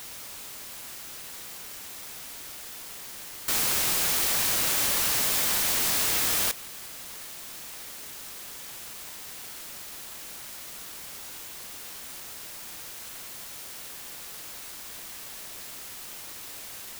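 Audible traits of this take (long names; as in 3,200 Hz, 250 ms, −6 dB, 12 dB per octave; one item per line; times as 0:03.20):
a quantiser's noise floor 8 bits, dither triangular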